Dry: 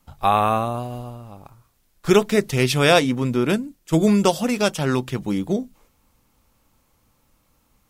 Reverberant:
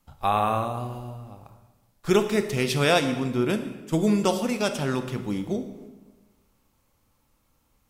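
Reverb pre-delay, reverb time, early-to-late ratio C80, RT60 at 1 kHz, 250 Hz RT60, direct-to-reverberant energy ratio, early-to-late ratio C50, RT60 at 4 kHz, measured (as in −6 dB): 24 ms, 1.3 s, 11.5 dB, 1.2 s, 1.4 s, 8.0 dB, 9.5 dB, 0.95 s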